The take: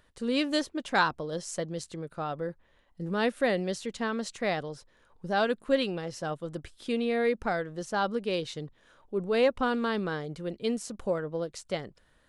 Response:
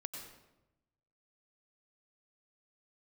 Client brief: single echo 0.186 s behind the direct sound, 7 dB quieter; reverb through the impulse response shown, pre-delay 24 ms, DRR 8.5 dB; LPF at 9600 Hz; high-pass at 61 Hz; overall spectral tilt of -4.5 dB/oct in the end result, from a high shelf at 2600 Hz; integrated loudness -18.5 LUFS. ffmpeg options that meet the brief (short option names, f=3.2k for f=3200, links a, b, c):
-filter_complex "[0:a]highpass=61,lowpass=9.6k,highshelf=f=2.6k:g=-8,aecho=1:1:186:0.447,asplit=2[a][b];[1:a]atrim=start_sample=2205,adelay=24[c];[b][c]afir=irnorm=-1:irlink=0,volume=-6.5dB[d];[a][d]amix=inputs=2:normalize=0,volume=11.5dB"